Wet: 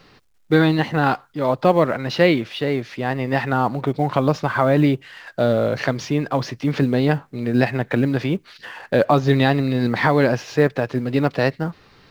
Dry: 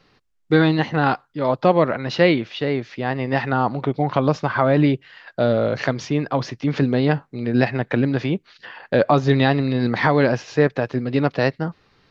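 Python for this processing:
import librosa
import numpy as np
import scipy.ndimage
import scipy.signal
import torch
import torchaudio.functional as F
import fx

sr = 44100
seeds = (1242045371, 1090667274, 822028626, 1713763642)

y = fx.law_mismatch(x, sr, coded='mu')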